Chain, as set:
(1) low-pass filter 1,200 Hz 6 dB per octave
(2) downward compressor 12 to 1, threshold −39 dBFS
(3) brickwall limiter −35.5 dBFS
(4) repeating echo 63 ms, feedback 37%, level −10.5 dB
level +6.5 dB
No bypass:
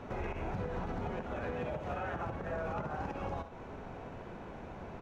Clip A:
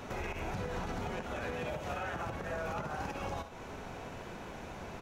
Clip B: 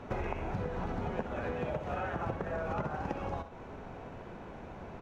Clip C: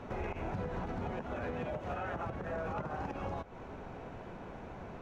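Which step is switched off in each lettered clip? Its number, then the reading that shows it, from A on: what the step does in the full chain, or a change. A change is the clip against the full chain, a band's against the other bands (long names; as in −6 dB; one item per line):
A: 1, 4 kHz band +8.5 dB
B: 3, change in crest factor +5.5 dB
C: 4, change in crest factor −2.0 dB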